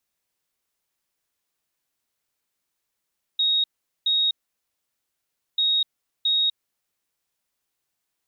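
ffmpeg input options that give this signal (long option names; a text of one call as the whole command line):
ffmpeg -f lavfi -i "aevalsrc='0.126*sin(2*PI*3760*t)*clip(min(mod(mod(t,2.19),0.67),0.25-mod(mod(t,2.19),0.67))/0.005,0,1)*lt(mod(t,2.19),1.34)':duration=4.38:sample_rate=44100" out.wav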